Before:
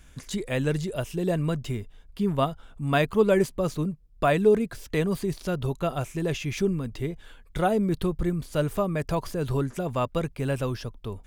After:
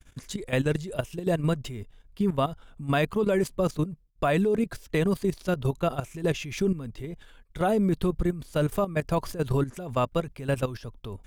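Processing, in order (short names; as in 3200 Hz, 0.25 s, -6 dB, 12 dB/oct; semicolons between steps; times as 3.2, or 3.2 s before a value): level quantiser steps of 13 dB; expander -49 dBFS; gain +3.5 dB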